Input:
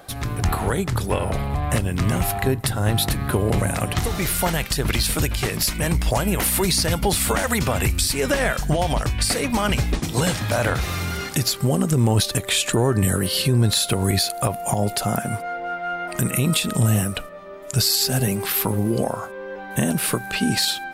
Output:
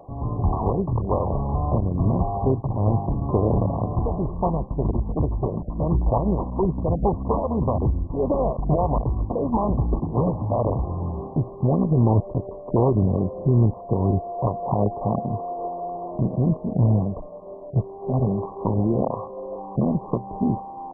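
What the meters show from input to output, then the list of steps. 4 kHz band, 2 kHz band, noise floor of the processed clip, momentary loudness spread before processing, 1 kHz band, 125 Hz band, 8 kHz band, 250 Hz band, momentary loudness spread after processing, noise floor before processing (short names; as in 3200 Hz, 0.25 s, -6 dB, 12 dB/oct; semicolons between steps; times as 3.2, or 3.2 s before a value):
under -40 dB, under -40 dB, -38 dBFS, 7 LU, -0.5 dB, 0.0 dB, under -40 dB, 0.0 dB, 8 LU, -34 dBFS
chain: MP2 8 kbps 24000 Hz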